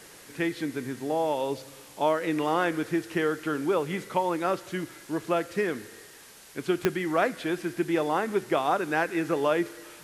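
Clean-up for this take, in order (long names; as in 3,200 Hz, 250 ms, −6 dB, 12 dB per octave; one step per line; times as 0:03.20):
click removal
broadband denoise 25 dB, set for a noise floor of −48 dBFS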